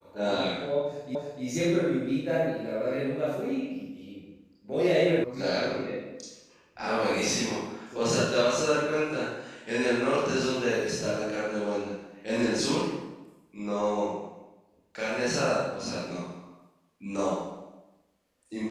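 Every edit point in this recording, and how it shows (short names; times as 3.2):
1.15 repeat of the last 0.3 s
5.24 sound cut off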